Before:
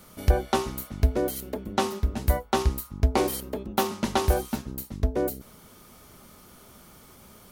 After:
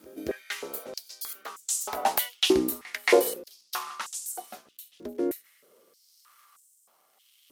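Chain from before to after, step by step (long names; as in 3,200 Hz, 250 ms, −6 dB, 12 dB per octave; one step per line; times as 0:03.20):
source passing by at 0:02.22, 19 m/s, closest 8.8 metres
high-shelf EQ 11,000 Hz +5 dB
surface crackle 190 per second −59 dBFS
rotating-speaker cabinet horn 0.9 Hz
backwards echo 226 ms −20.5 dB
high-pass on a step sequencer 3.2 Hz 310–7,600 Hz
level +9 dB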